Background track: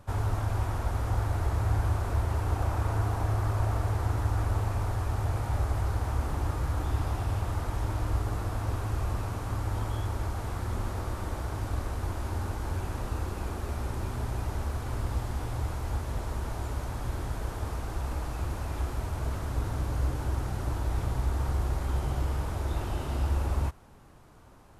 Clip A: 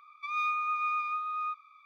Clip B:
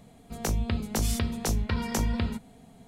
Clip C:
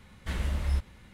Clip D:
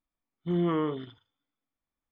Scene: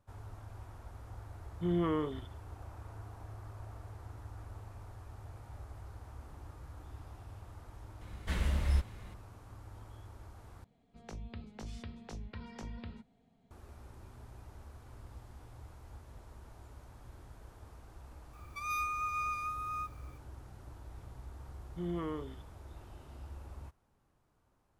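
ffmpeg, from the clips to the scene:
-filter_complex "[4:a]asplit=2[s0][s1];[0:a]volume=0.106[s2];[2:a]lowpass=4500[s3];[1:a]aexciter=amount=13.5:drive=4.1:freq=5500[s4];[s2]asplit=2[s5][s6];[s5]atrim=end=10.644[s7];[s3]atrim=end=2.87,asetpts=PTS-STARTPTS,volume=0.141[s8];[s6]atrim=start=13.506[s9];[s0]atrim=end=2.11,asetpts=PTS-STARTPTS,volume=0.596,afade=t=in:d=0.004:c=hsin,afade=t=out:st=2.106:d=0.004:c=hsin,adelay=1150[s10];[3:a]atrim=end=1.13,asetpts=PTS-STARTPTS,volume=0.841,afade=t=in:d=0.004:c=hsin,afade=t=out:st=1.126:d=0.004:c=hsin,adelay=8010[s11];[s4]atrim=end=1.85,asetpts=PTS-STARTPTS,volume=0.562,afade=t=in:d=0.004:c=hsin,afade=t=out:st=1.846:d=0.004:c=hsin,adelay=18330[s12];[s1]atrim=end=2.11,asetpts=PTS-STARTPTS,volume=0.299,afade=t=in:d=0.004:c=hsin,afade=t=out:st=2.106:d=0.004:c=hsin,adelay=21300[s13];[s7][s8]acrossfade=d=0.004:c1=hsin:c2=hsin[s14];[s14][s9]acrossfade=d=0.004:c1=hsin:c2=hsin[s15];[s15][s10][s11][s12][s13]amix=inputs=5:normalize=0"

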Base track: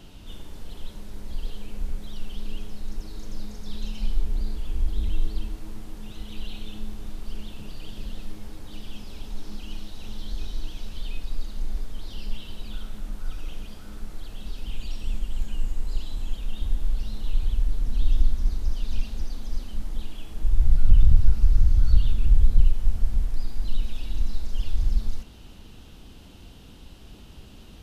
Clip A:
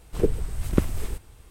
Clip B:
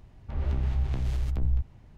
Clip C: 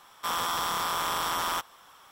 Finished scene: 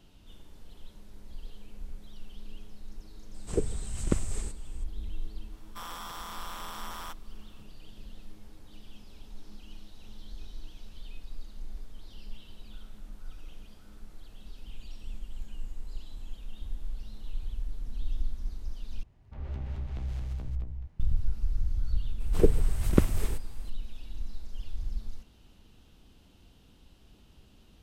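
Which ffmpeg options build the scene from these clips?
-filter_complex "[1:a]asplit=2[s0][s1];[0:a]volume=0.266[s2];[s0]lowpass=f=7800:t=q:w=4.8[s3];[2:a]aecho=1:1:222:0.562[s4];[s2]asplit=2[s5][s6];[s5]atrim=end=19.034[s7];[s4]atrim=end=1.97,asetpts=PTS-STARTPTS,volume=0.376[s8];[s6]atrim=start=20.996[s9];[s3]atrim=end=1.5,asetpts=PTS-STARTPTS,volume=0.473,afade=t=in:d=0.004:c=hsin,afade=t=out:st=1.496:d=0.004:c=hsin,adelay=3340[s10];[3:a]atrim=end=2.11,asetpts=PTS-STARTPTS,volume=0.237,afade=t=in:d=0.004:c=hsin,afade=t=out:st=2.106:d=0.004:c=hsin,adelay=5520[s11];[s1]atrim=end=1.5,asetpts=PTS-STARTPTS,volume=0.944,afade=t=in:d=0.004:c=hsin,afade=t=out:st=1.496:d=0.004:c=hsin,adelay=22200[s12];[s7][s8]acrossfade=d=0.004:c1=hsin:c2=hsin[s13];[s13][s9]acrossfade=d=0.004:c1=hsin:c2=hsin[s14];[s14][s10][s11][s12]amix=inputs=4:normalize=0"

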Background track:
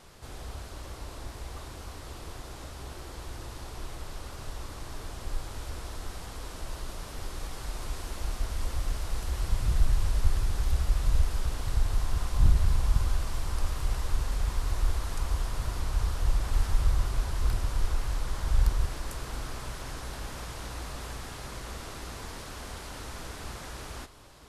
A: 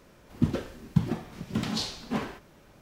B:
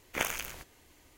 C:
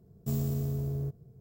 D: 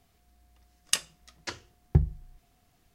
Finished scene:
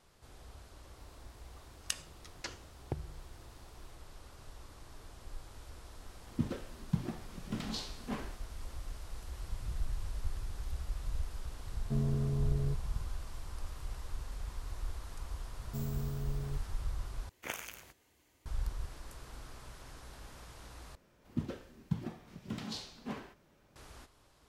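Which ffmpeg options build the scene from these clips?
-filter_complex "[1:a]asplit=2[s0][s1];[3:a]asplit=2[s2][s3];[0:a]volume=0.237[s4];[4:a]acompressor=threshold=0.00708:ratio=4:attack=27:release=100:knee=1:detection=peak[s5];[s2]adynamicsmooth=sensitivity=2.5:basefreq=2500[s6];[2:a]highpass=47[s7];[s4]asplit=3[s8][s9][s10];[s8]atrim=end=17.294[s11];[s7]atrim=end=1.17,asetpts=PTS-STARTPTS,volume=0.355[s12];[s9]atrim=start=18.456:end=20.954[s13];[s1]atrim=end=2.81,asetpts=PTS-STARTPTS,volume=0.282[s14];[s10]atrim=start=23.756[s15];[s5]atrim=end=2.94,asetpts=PTS-STARTPTS,volume=0.891,afade=t=in:d=0.004:c=hsin,afade=t=out:st=2.936:d=0.004:c=hsin,adelay=970[s16];[s0]atrim=end=2.81,asetpts=PTS-STARTPTS,volume=0.355,afade=t=in:d=0.004:c=hsin,afade=t=out:st=2.806:d=0.004:c=hsin,adelay=5970[s17];[s6]atrim=end=1.4,asetpts=PTS-STARTPTS,volume=0.841,afade=t=in:d=0.004:c=hsin,afade=t=out:st=1.396:d=0.004:c=hsin,adelay=11640[s18];[s3]atrim=end=1.4,asetpts=PTS-STARTPTS,volume=0.422,afade=t=in:d=0.004:c=hsin,afade=t=out:st=1.396:d=0.004:c=hsin,adelay=15470[s19];[s11][s12]acrossfade=d=0.004:c1=hsin:c2=hsin[s20];[s20][s13]acrossfade=d=0.004:c1=hsin:c2=hsin[s21];[s21][s14]acrossfade=d=0.004:c1=hsin:c2=hsin[s22];[s22][s15]acrossfade=d=0.004:c1=hsin:c2=hsin[s23];[s23][s16][s17][s18][s19]amix=inputs=5:normalize=0"

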